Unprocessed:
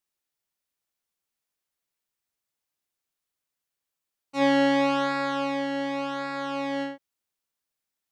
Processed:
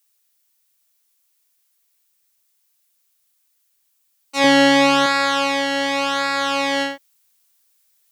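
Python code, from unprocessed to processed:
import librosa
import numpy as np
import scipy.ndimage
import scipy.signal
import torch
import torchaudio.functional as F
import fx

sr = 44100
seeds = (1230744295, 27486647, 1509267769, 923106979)

p1 = fx.low_shelf(x, sr, hz=250.0, db=11.5, at=(4.44, 5.06))
p2 = fx.rider(p1, sr, range_db=4, speed_s=2.0)
p3 = p1 + F.gain(torch.from_numpy(p2), -2.5).numpy()
p4 = fx.tilt_eq(p3, sr, slope=3.5)
y = F.gain(torch.from_numpy(p4), 4.0).numpy()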